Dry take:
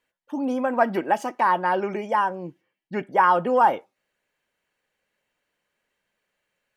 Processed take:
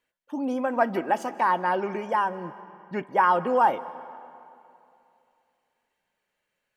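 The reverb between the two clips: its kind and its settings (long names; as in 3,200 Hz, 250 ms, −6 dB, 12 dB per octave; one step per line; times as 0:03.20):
comb and all-pass reverb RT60 2.7 s, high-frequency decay 0.75×, pre-delay 110 ms, DRR 16 dB
level −2.5 dB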